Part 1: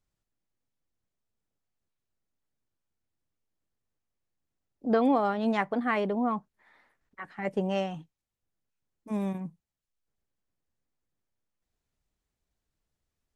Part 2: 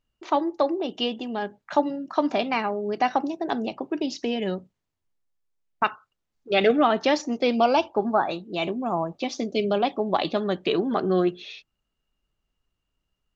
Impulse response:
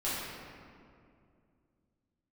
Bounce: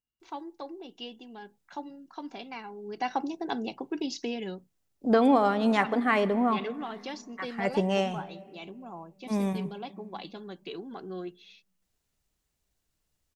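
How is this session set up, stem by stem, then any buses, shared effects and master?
+2.0 dB, 0.20 s, send -22 dB, none
2.64 s -15.5 dB -> 3.22 s -5 dB -> 4.22 s -5 dB -> 5.00 s -16 dB, 0.00 s, no send, comb of notches 610 Hz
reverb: on, RT60 2.4 s, pre-delay 5 ms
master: treble shelf 3.5 kHz +7 dB

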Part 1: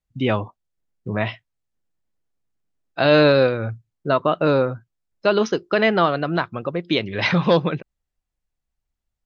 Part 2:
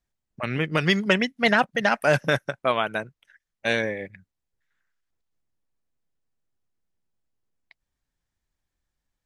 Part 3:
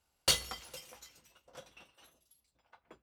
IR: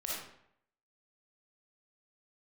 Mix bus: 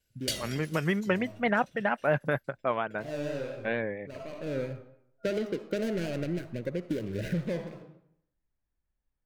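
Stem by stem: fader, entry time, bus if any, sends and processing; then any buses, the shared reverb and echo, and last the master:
-4.5 dB, 0.00 s, bus A, send -18.5 dB, median filter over 41 samples; auto duck -22 dB, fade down 0.30 s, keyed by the second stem
-5.0 dB, 0.00 s, no bus, no send, Gaussian low-pass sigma 3.6 samples
0.0 dB, 0.00 s, bus A, send -18.5 dB, none
bus A: 0.0 dB, FFT band-reject 650–1400 Hz; compression, threshold -29 dBFS, peak gain reduction 9 dB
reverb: on, RT60 0.70 s, pre-delay 15 ms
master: vibrato 4.3 Hz 49 cents

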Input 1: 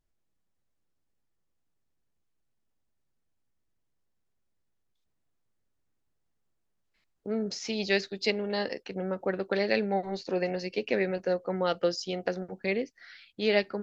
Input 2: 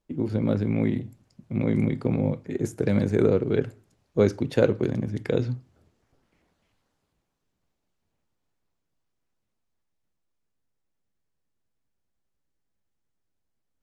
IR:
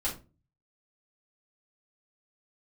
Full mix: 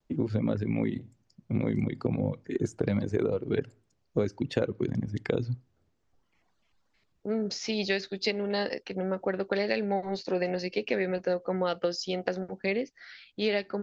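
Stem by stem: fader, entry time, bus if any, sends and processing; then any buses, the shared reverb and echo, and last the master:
+2.0 dB, 0.00 s, no send, none
+1.5 dB, 0.00 s, no send, reverb removal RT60 1.5 s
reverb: none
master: low-pass 7 kHz 24 dB/octave; vibrato 0.34 Hz 17 cents; compression 12:1, threshold -23 dBFS, peak gain reduction 11.5 dB

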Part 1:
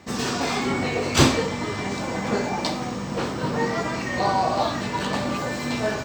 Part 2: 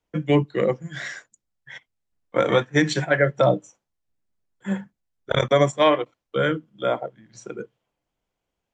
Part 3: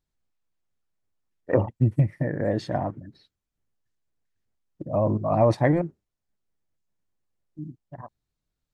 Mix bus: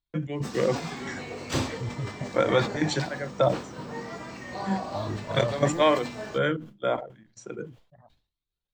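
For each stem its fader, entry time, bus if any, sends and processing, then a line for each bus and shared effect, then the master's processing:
-5.5 dB, 0.35 s, no send, auto duck -7 dB, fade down 0.55 s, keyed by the second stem
-3.5 dB, 0.00 s, no send, gate -48 dBFS, range -16 dB; high-pass 62 Hz; trance gate ".x.xxxx.xx..x" 112 bpm -12 dB
-3.0 dB, 0.00 s, no send, level held to a coarse grid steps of 12 dB; resonant low-pass 3.8 kHz, resonance Q 3.5; Shepard-style flanger rising 1.2 Hz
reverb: none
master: decay stretcher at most 130 dB/s

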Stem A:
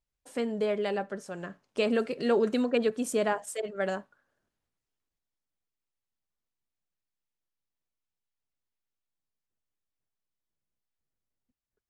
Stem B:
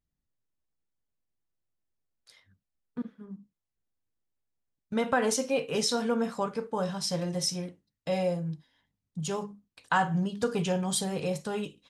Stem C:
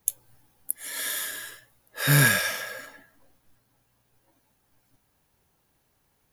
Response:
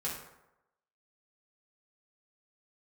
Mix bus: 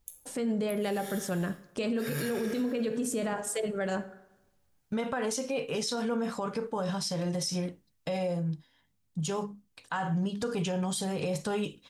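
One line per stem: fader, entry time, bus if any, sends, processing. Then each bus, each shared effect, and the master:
+2.0 dB, 0.00 s, bus A, send -14 dB, tone controls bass +9 dB, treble +5 dB
+1.5 dB, 0.00 s, bus A, no send, none
-17.0 dB, 0.00 s, no bus, send -5.5 dB, none
bus A: 0.0 dB, gain riding within 4 dB 0.5 s; peak limiter -23 dBFS, peak gain reduction 11 dB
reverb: on, RT60 0.90 s, pre-delay 3 ms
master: peak limiter -23.5 dBFS, peak gain reduction 10 dB

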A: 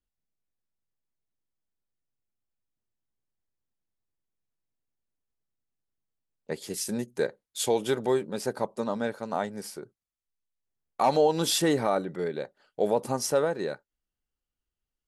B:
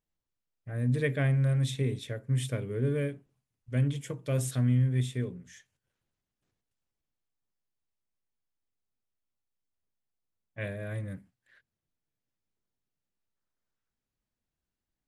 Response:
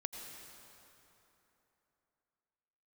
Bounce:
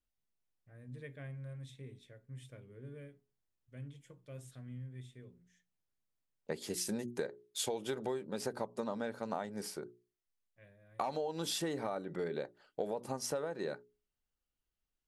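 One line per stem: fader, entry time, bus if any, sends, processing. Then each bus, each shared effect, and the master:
-1.5 dB, 0.00 s, no send, none
-14.5 dB, 0.00 s, no send, feedback comb 180 Hz, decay 0.18 s, harmonics all, mix 50%; auto duck -6 dB, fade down 1.20 s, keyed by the first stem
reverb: none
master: treble shelf 8.1 kHz -4.5 dB; hum notches 60/120/180/240/300/360/420 Hz; compression 16:1, threshold -33 dBFS, peak gain reduction 15 dB

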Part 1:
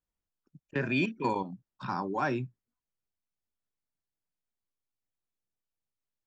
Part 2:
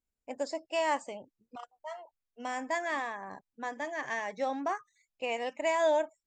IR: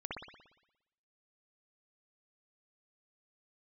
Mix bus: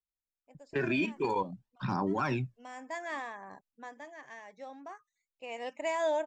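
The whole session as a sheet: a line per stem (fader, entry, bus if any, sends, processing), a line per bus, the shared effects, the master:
+1.5 dB, 0.00 s, no send, gate with hold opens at -58 dBFS; level-controlled noise filter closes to 2.3 kHz, open at -30.5 dBFS; phaser 0.5 Hz, delay 3.3 ms, feedback 59%
1.66 s -16.5 dB -> 2.08 s -4.5 dB -> 3.54 s -4.5 dB -> 4.26 s -13.5 dB -> 5.33 s -13.5 dB -> 5.66 s -3.5 dB, 0.20 s, no send, auto duck -9 dB, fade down 1.30 s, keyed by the first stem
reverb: none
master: peak limiter -21.5 dBFS, peak gain reduction 9 dB

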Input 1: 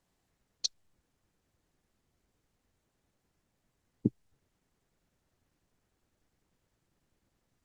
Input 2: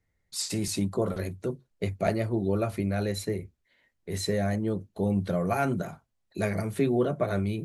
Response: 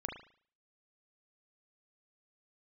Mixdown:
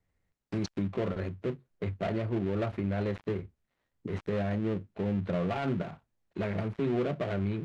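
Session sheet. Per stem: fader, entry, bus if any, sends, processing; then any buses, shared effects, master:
-12.0 dB, 0.00 s, no send, none
-1.5 dB, 0.00 s, no send, dead-time distortion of 0.23 ms; low-pass 2.7 kHz 12 dB/octave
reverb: none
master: peak limiter -21.5 dBFS, peak gain reduction 7.5 dB

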